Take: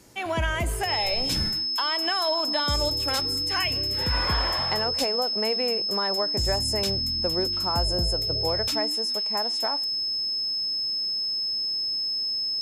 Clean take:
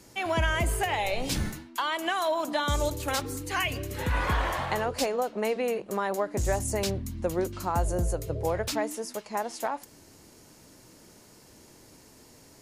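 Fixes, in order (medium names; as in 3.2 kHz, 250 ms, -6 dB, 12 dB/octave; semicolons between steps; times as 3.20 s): band-stop 5.2 kHz, Q 30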